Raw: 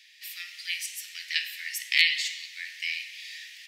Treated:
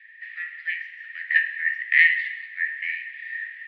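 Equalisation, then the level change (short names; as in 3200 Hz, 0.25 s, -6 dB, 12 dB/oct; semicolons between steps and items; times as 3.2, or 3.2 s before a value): synth low-pass 1800 Hz, resonance Q 10; air absorption 290 m; 0.0 dB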